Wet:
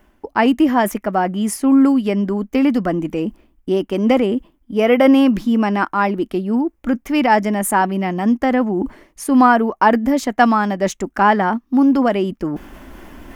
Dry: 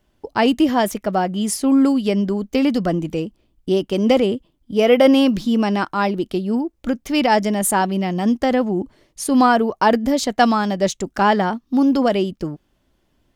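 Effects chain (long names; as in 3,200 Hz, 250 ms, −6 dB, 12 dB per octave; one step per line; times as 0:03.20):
reversed playback
upward compression, threshold −16 dBFS
reversed playback
graphic EQ with 10 bands 125 Hz −10 dB, 250 Hz +4 dB, 500 Hz −3 dB, 1,000 Hz +3 dB, 2,000 Hz +4 dB, 4,000 Hz −10 dB, 8,000 Hz −4 dB
level +1 dB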